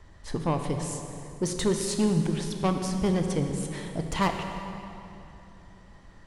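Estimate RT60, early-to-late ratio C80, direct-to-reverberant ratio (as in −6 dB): 3.0 s, 6.0 dB, 4.5 dB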